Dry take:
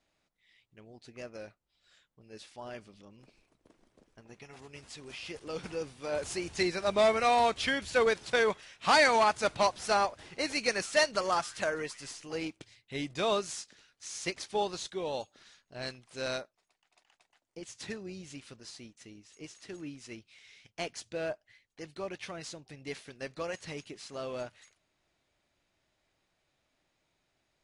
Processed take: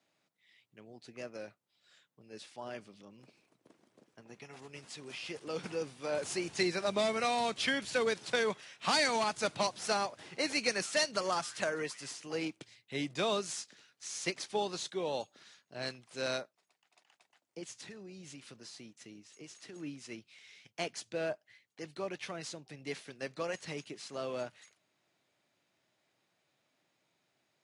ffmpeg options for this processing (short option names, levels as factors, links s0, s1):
-filter_complex "[0:a]asettb=1/sr,asplit=3[s0][s1][s2];[s0]atrim=end=17.714[s3];[s1]atrim=start=17.71:end=19.76,asetpts=PTS-STARTPTS,afade=t=in:d=0.004:c=qsin,afade=t=out:st=2.046:d=0.004:c=qsin,acompressor=threshold=0.00562:ratio=6:attack=3.2:release=140:knee=1:detection=peak[s4];[s2]atrim=start=19.756[s5];[s3][s4]acrossfade=d=0.004:c1=hsin:c2=qsin[s6];[s6][s5]acrossfade=d=0.004:c1=qsin:c2=hsin,highpass=f=120:w=0.5412,highpass=f=120:w=1.3066,acrossover=split=290|3000[s7][s8][s9];[s8]acompressor=threshold=0.0316:ratio=6[s10];[s7][s10][s9]amix=inputs=3:normalize=0"